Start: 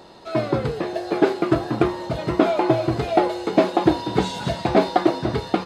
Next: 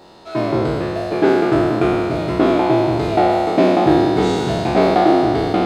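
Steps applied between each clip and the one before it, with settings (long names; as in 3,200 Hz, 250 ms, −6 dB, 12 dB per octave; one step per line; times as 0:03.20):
peak hold with a decay on every bin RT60 2.37 s
level −1.5 dB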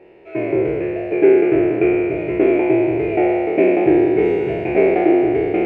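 drawn EQ curve 130 Hz 0 dB, 240 Hz −4 dB, 390 Hz +12 dB, 1,200 Hz −11 dB, 2,400 Hz +13 dB, 3,800 Hz −22 dB
level −6.5 dB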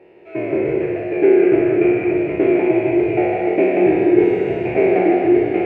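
high-pass filter 65 Hz
on a send at −3 dB: convolution reverb RT60 1.1 s, pre-delay 149 ms
on the sum: level −1.5 dB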